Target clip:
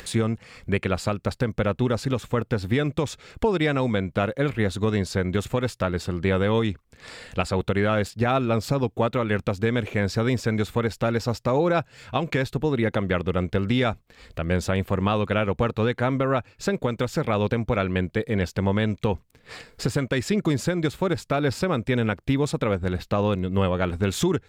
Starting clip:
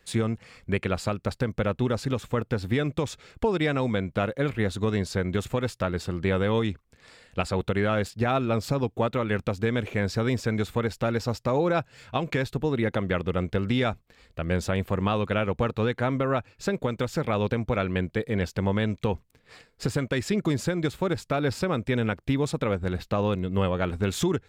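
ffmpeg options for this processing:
ffmpeg -i in.wav -af "acompressor=mode=upward:threshold=-33dB:ratio=2.5,volume=2.5dB" out.wav

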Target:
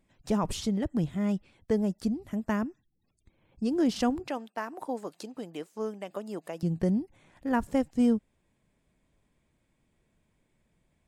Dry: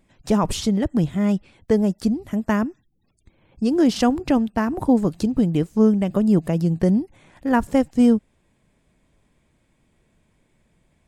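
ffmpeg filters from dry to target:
ffmpeg -i in.wav -filter_complex "[0:a]asettb=1/sr,asplit=3[link_01][link_02][link_03];[link_01]atrim=end=4.274[link_04];[link_02]atrim=start=4.27:end=6.63,asetpts=PTS-STARTPTS,afade=type=in:duration=0.004:curve=qsin,afade=type=out:start_time=2.356:duration=0.004:curve=qsin,highpass=520[link_05];[link_03]atrim=start=6.626[link_06];[link_04][link_05]acrossfade=duration=0.004:curve1=hsin:curve2=qsin[link_07];[link_07][link_06]acrossfade=duration=0.004:curve1=qsin:curve2=hsin,volume=-8.5dB" out.wav

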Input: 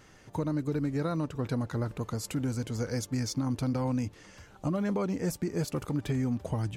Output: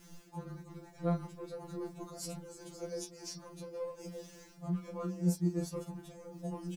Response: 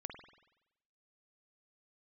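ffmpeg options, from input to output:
-filter_complex "[0:a]highshelf=frequency=3400:gain=9.5,flanger=delay=4.3:depth=5.2:regen=-36:speed=1.7:shape=triangular,equalizer=frequency=2000:width=1.1:gain=-8,asplit=2[link_01][link_02];[link_02]adynamicsmooth=sensitivity=6.5:basefreq=510,volume=2.5dB[link_03];[link_01][link_03]amix=inputs=2:normalize=0,lowpass=12000,asplit=2[link_04][link_05];[link_05]adelay=1224,volume=-14dB,highshelf=frequency=4000:gain=-27.6[link_06];[link_04][link_06]amix=inputs=2:normalize=0,acrusher=bits=9:mix=0:aa=0.000001,areverse,acompressor=threshold=-34dB:ratio=8,areverse[link_07];[1:a]atrim=start_sample=2205,atrim=end_sample=3087,asetrate=74970,aresample=44100[link_08];[link_07][link_08]afir=irnorm=-1:irlink=0,afftfilt=real='re*2.83*eq(mod(b,8),0)':imag='im*2.83*eq(mod(b,8),0)':win_size=2048:overlap=0.75,volume=10.5dB"

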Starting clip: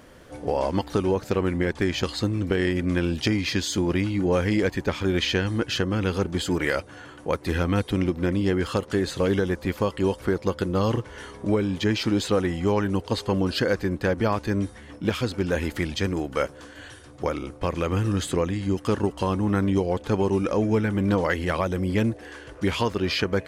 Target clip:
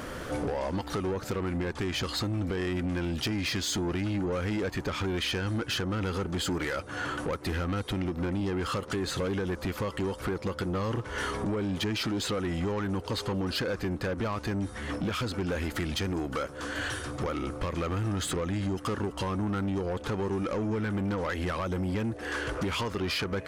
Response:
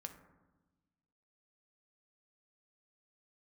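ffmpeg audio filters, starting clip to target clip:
-filter_complex "[0:a]equalizer=frequency=1300:width=3.7:gain=6,asplit=2[link_01][link_02];[link_02]alimiter=limit=-18.5dB:level=0:latency=1,volume=-2dB[link_03];[link_01][link_03]amix=inputs=2:normalize=0,acompressor=threshold=-31dB:ratio=6,asoftclip=type=tanh:threshold=-31.5dB,volume=6dB"

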